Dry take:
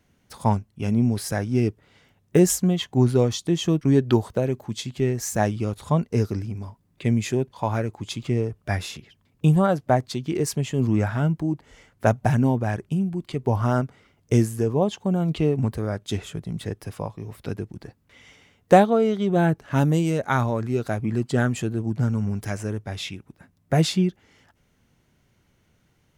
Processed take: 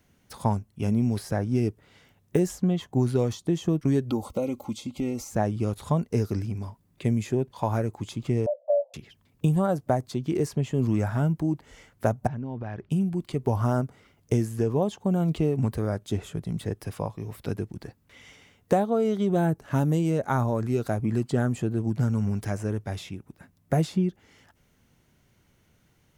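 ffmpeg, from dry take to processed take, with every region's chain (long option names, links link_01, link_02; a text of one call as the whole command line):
ffmpeg -i in.wav -filter_complex "[0:a]asettb=1/sr,asplit=3[link_01][link_02][link_03];[link_01]atrim=end=4.104[link_04];[link_02]atrim=start=4.1:end=5.31,asetpts=PTS-STARTPTS,afade=type=in:duration=0.004:curve=qsin,afade=type=out:start_time=1.206:duration=0.004:curve=qsin,aecho=1:1:3.7:0.7,atrim=end_sample=53361,acompressor=threshold=-27dB:ratio=2:attack=3.2:release=140:knee=1:detection=peak,asuperstop=centerf=1700:order=8:qfactor=3.2[link_05];[link_03]atrim=start=5.306[link_06];[link_04][link_05]acrossfade=duration=0.004:curve1=hsin:curve2=qsin[link_07];[link_07][link_06]acrossfade=duration=0.004:curve1=qsin:curve2=hsin,asettb=1/sr,asplit=3[link_08][link_09][link_10];[link_08]atrim=end=8.464[link_11];[link_09]atrim=start=8.46:end=8.94,asetpts=PTS-STARTPTS,afade=type=in:duration=0.004:curve=qsin,afade=type=out:start_time=0.476:duration=0.004:curve=qsin,acontrast=85,afreqshift=480,asuperpass=centerf=380:order=12:qfactor=0.87[link_12];[link_10]atrim=start=8.936[link_13];[link_11][link_12]acrossfade=duration=0.004:curve1=hsin:curve2=qsin[link_14];[link_14][link_13]acrossfade=duration=0.004:curve1=qsin:curve2=hsin,asettb=1/sr,asplit=3[link_15][link_16][link_17];[link_15]atrim=end=12.274[link_18];[link_16]atrim=start=12.27:end=12.9,asetpts=PTS-STARTPTS,afade=type=in:duration=0.004:curve=qsin,afade=type=out:start_time=0.626:duration=0.004:curve=qsin,lowpass=frequency=4300:width=0.5412,lowpass=frequency=4300:width=1.3066,acompressor=threshold=-30dB:ratio=8:attack=3.2:release=140:knee=1:detection=peak[link_19];[link_17]atrim=start=12.896[link_20];[link_18][link_19]acrossfade=duration=0.004:curve1=hsin:curve2=qsin[link_21];[link_21][link_20]acrossfade=duration=0.004:curve1=qsin:curve2=hsin,acrossover=split=1300|5600[link_22][link_23][link_24];[link_22]acompressor=threshold=-20dB:ratio=4[link_25];[link_23]acompressor=threshold=-47dB:ratio=4[link_26];[link_24]acompressor=threshold=-51dB:ratio=4[link_27];[link_25][link_26][link_27]amix=inputs=3:normalize=0,highshelf=frequency=9900:gain=6" out.wav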